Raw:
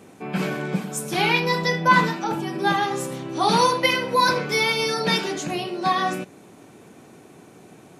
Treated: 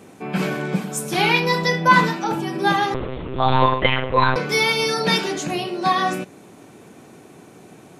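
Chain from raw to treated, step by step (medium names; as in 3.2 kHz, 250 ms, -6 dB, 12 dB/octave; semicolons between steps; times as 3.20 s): 2.94–4.36 s: monotone LPC vocoder at 8 kHz 130 Hz; trim +2.5 dB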